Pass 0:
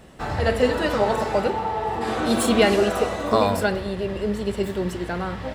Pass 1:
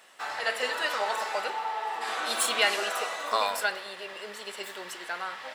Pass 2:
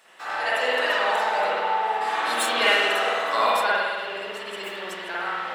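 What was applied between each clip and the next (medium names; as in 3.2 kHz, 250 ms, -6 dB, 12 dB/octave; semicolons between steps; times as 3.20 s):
high-pass 1.1 kHz 12 dB/octave
spring tank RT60 1.5 s, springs 51 ms, chirp 75 ms, DRR -8.5 dB; trim -2 dB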